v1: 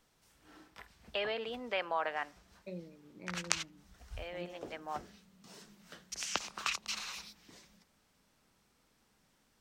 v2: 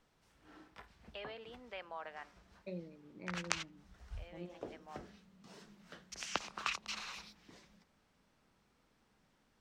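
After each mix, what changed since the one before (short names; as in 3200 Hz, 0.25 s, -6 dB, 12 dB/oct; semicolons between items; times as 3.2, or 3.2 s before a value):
first voice -12.0 dB; background: add LPF 2900 Hz 6 dB/oct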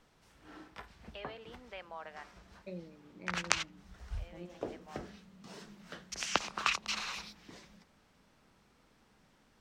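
background +6.5 dB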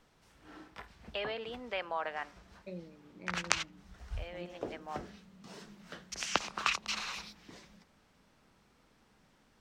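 first voice +10.0 dB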